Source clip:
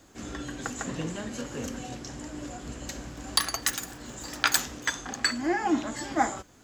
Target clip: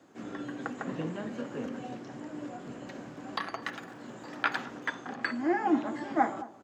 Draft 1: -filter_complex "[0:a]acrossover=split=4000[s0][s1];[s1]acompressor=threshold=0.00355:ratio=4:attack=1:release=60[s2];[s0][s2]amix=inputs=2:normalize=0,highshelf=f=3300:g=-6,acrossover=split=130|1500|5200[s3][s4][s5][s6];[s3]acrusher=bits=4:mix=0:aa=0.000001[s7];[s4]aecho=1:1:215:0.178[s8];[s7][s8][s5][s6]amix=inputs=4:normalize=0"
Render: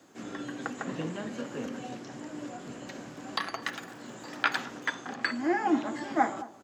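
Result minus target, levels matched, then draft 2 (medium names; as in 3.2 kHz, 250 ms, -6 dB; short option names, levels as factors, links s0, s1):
8 kHz band +7.0 dB
-filter_complex "[0:a]acrossover=split=4000[s0][s1];[s1]acompressor=threshold=0.00355:ratio=4:attack=1:release=60[s2];[s0][s2]amix=inputs=2:normalize=0,highshelf=f=3300:g=-16,acrossover=split=130|1500|5200[s3][s4][s5][s6];[s3]acrusher=bits=4:mix=0:aa=0.000001[s7];[s4]aecho=1:1:215:0.178[s8];[s7][s8][s5][s6]amix=inputs=4:normalize=0"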